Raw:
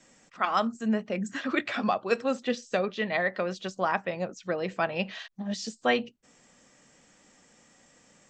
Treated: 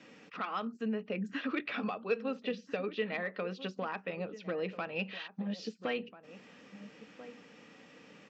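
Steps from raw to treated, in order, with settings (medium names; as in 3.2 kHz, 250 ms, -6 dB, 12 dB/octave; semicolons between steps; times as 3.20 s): band-stop 370 Hz, Q 12; compression 2.5:1, threshold -45 dBFS, peak gain reduction 16.5 dB; overload inside the chain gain 32 dB; cabinet simulation 110–4700 Hz, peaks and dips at 190 Hz +4 dB, 290 Hz +6 dB, 440 Hz +9 dB, 650 Hz -3 dB, 1.3 kHz +3 dB, 2.6 kHz +8 dB; echo from a far wall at 230 m, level -14 dB; trim +2.5 dB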